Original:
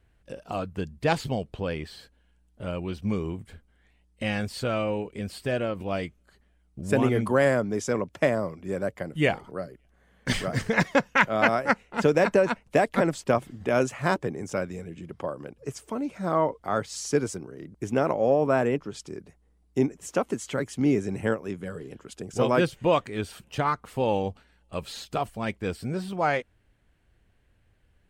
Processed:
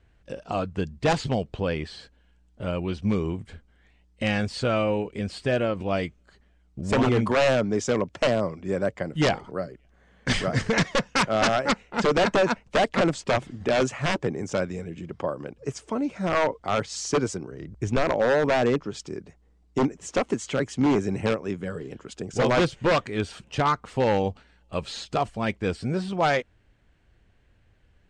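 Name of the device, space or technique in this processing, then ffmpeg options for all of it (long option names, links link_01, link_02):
synthesiser wavefolder: -filter_complex "[0:a]aeval=exprs='0.126*(abs(mod(val(0)/0.126+3,4)-2)-1)':channel_layout=same,lowpass=frequency=7700:width=0.5412,lowpass=frequency=7700:width=1.3066,asplit=3[link_01][link_02][link_03];[link_01]afade=type=out:start_time=17.51:duration=0.02[link_04];[link_02]asubboost=boost=3.5:cutoff=110,afade=type=in:start_time=17.51:duration=0.02,afade=type=out:start_time=18.02:duration=0.02[link_05];[link_03]afade=type=in:start_time=18.02:duration=0.02[link_06];[link_04][link_05][link_06]amix=inputs=3:normalize=0,volume=3.5dB"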